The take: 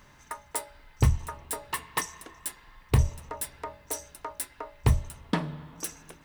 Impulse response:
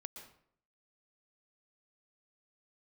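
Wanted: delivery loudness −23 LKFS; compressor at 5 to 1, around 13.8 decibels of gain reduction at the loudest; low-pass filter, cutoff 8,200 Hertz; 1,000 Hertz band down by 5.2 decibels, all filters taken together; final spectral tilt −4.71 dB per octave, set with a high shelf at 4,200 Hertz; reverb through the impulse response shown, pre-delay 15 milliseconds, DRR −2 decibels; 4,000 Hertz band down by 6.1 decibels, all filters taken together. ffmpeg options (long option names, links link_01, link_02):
-filter_complex "[0:a]lowpass=8200,equalizer=frequency=1000:width_type=o:gain=-5.5,equalizer=frequency=4000:width_type=o:gain=-6,highshelf=frequency=4200:gain=-3,acompressor=threshold=-32dB:ratio=5,asplit=2[link_01][link_02];[1:a]atrim=start_sample=2205,adelay=15[link_03];[link_02][link_03]afir=irnorm=-1:irlink=0,volume=6.5dB[link_04];[link_01][link_04]amix=inputs=2:normalize=0,volume=14.5dB"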